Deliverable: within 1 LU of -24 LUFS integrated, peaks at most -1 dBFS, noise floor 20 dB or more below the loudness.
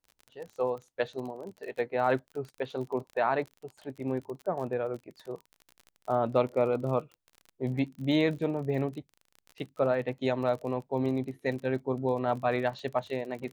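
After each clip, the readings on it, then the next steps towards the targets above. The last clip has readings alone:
ticks 34/s; loudness -31.0 LUFS; peak -11.5 dBFS; loudness target -24.0 LUFS
-> de-click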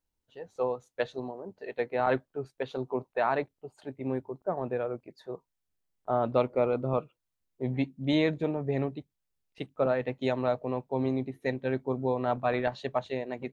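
ticks 0/s; loudness -31.0 LUFS; peak -11.5 dBFS; loudness target -24.0 LUFS
-> gain +7 dB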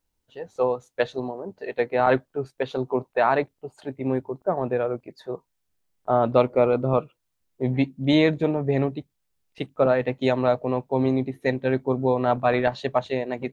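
loudness -24.0 LUFS; peak -4.5 dBFS; noise floor -77 dBFS

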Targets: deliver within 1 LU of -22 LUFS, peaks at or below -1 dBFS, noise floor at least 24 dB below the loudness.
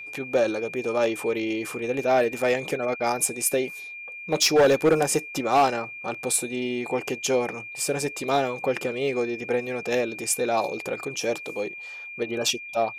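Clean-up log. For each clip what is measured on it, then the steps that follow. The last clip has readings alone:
clipped 0.5%; flat tops at -13.5 dBFS; steady tone 2400 Hz; tone level -36 dBFS; loudness -25.0 LUFS; peak -13.5 dBFS; loudness target -22.0 LUFS
-> clip repair -13.5 dBFS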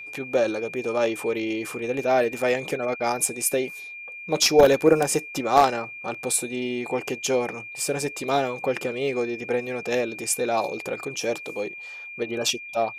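clipped 0.0%; steady tone 2400 Hz; tone level -36 dBFS
-> notch 2400 Hz, Q 30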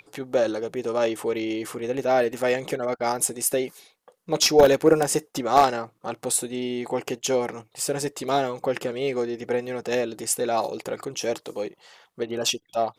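steady tone none; loudness -24.5 LUFS; peak -4.5 dBFS; loudness target -22.0 LUFS
-> gain +2.5 dB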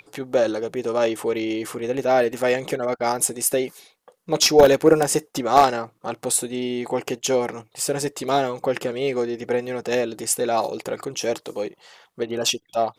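loudness -22.0 LUFS; peak -2.0 dBFS; noise floor -65 dBFS

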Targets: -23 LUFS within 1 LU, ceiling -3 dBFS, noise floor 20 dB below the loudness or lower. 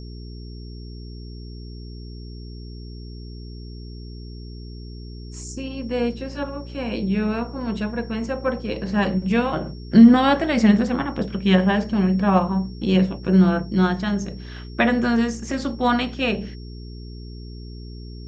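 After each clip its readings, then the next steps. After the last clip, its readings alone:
hum 60 Hz; harmonics up to 420 Hz; hum level -34 dBFS; steady tone 5500 Hz; tone level -48 dBFS; loudness -21.0 LUFS; peak -2.0 dBFS; loudness target -23.0 LUFS
-> de-hum 60 Hz, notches 7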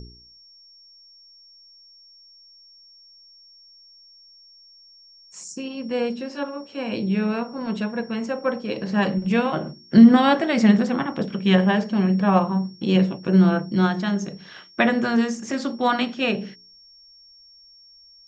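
hum none; steady tone 5500 Hz; tone level -48 dBFS
-> notch 5500 Hz, Q 30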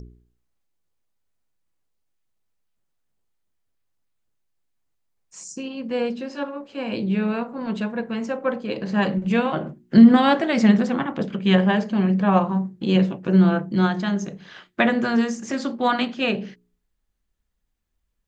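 steady tone none; loudness -21.0 LUFS; peak -2.5 dBFS; loudness target -23.0 LUFS
-> gain -2 dB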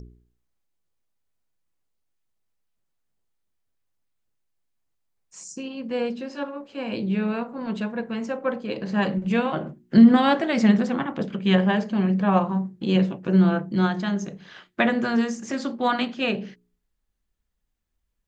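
loudness -23.0 LUFS; peak -4.5 dBFS; noise floor -76 dBFS

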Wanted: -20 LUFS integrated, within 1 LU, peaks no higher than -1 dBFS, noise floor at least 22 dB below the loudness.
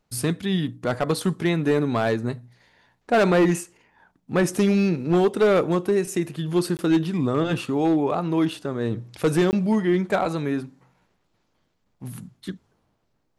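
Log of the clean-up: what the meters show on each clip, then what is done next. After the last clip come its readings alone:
clipped 1.1%; flat tops at -13.5 dBFS; dropouts 2; longest dropout 19 ms; loudness -23.0 LUFS; peak -13.5 dBFS; loudness target -20.0 LUFS
-> clip repair -13.5 dBFS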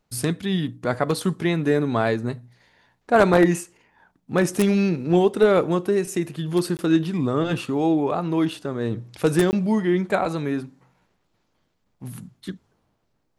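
clipped 0.0%; dropouts 2; longest dropout 19 ms
-> interpolate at 6.77/9.51, 19 ms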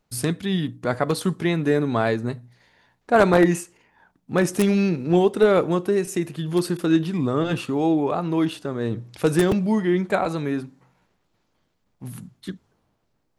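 dropouts 0; loudness -22.0 LUFS; peak -4.5 dBFS; loudness target -20.0 LUFS
-> gain +2 dB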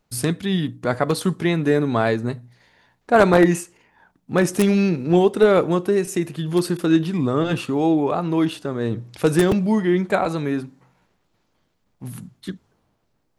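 loudness -20.0 LUFS; peak -2.5 dBFS; noise floor -69 dBFS

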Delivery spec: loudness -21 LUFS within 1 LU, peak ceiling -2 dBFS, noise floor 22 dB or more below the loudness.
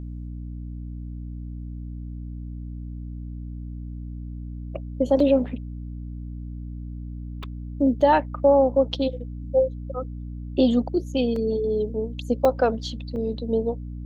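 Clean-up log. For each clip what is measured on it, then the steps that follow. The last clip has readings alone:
dropouts 6; longest dropout 3.1 ms; hum 60 Hz; harmonics up to 300 Hz; hum level -31 dBFS; loudness -23.5 LUFS; peak -7.0 dBFS; loudness target -21.0 LUFS
-> interpolate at 5.2/7.43/8.01/11.36/12.45/13.16, 3.1 ms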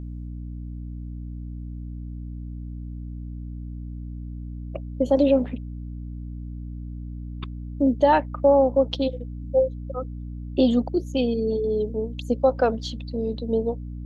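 dropouts 0; hum 60 Hz; harmonics up to 300 Hz; hum level -31 dBFS
-> de-hum 60 Hz, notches 5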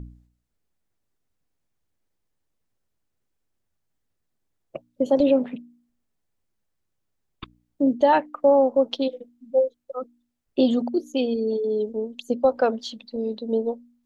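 hum none; loudness -23.0 LUFS; peak -7.5 dBFS; loudness target -21.0 LUFS
-> gain +2 dB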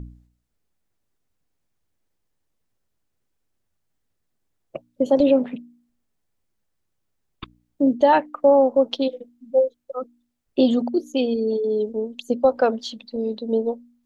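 loudness -21.0 LUFS; peak -5.5 dBFS; noise floor -74 dBFS

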